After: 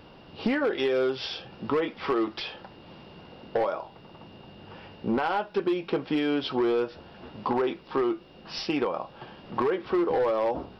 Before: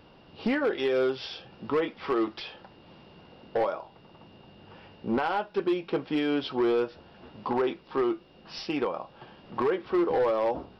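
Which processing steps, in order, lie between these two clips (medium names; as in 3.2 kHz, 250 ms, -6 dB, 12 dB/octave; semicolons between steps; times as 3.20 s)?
compression 3:1, threshold -28 dBFS, peak gain reduction 5 dB; trim +4.5 dB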